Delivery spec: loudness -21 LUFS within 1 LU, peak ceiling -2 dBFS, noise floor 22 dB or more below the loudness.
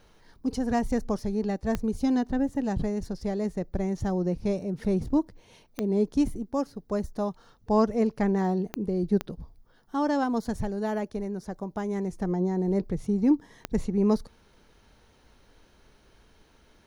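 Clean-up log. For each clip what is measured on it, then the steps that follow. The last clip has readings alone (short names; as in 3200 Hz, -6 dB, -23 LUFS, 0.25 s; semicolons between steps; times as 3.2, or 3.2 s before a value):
clicks 5; loudness -28.5 LUFS; peak -12.0 dBFS; loudness target -21.0 LUFS
-> de-click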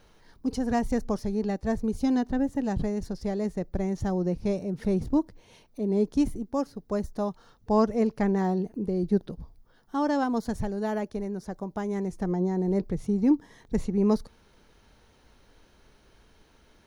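clicks 0; loudness -28.5 LUFS; peak -12.0 dBFS; loudness target -21.0 LUFS
-> gain +7.5 dB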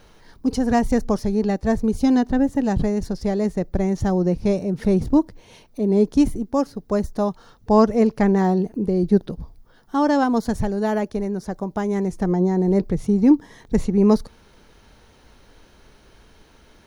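loudness -21.0 LUFS; peak -4.5 dBFS; noise floor -53 dBFS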